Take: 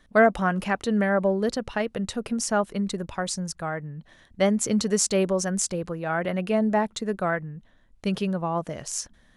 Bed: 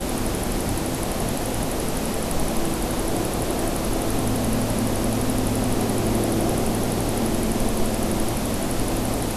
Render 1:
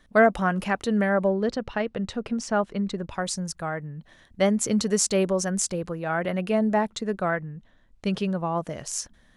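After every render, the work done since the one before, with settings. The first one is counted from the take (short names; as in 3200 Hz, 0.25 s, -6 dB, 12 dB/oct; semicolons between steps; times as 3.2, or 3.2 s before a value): 1.29–3.1 air absorption 100 m; 6.9–8.35 LPF 8500 Hz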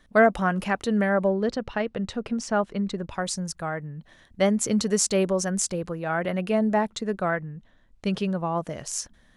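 nothing audible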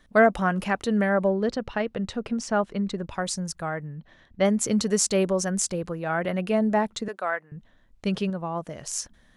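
3.95–4.45 air absorption 120 m; 7.08–7.52 HPF 610 Hz; 8.3–8.83 gain -3.5 dB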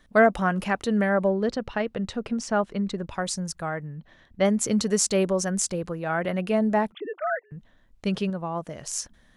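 6.92–7.51 sine-wave speech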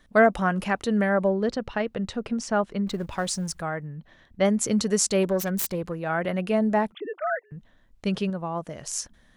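2.87–3.62 G.711 law mismatch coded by mu; 5.23–5.95 self-modulated delay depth 0.24 ms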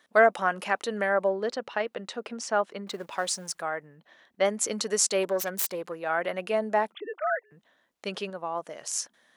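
HPF 440 Hz 12 dB/oct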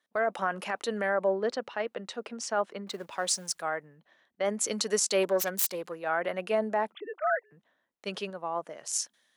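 limiter -18 dBFS, peak gain reduction 11 dB; three-band expander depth 40%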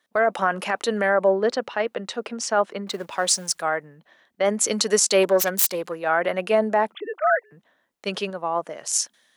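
gain +8 dB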